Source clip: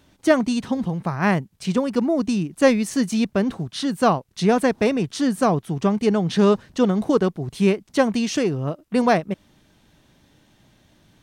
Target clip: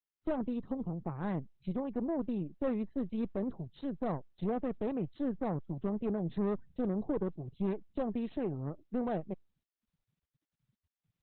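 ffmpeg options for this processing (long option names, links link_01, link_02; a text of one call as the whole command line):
ffmpeg -i in.wav -af "aeval=exprs='(tanh(8.91*val(0)+0.8)-tanh(0.8))/8.91':channel_layout=same,afftfilt=real='re*gte(hypot(re,im),0.00794)':imag='im*gte(hypot(re,im),0.00794)':win_size=1024:overlap=0.75,equalizer=frequency=2900:width_type=o:width=1.9:gain=-13.5,bandreject=frequency=1400:width=17,volume=-8dB" -ar 48000 -c:a libopus -b:a 8k out.opus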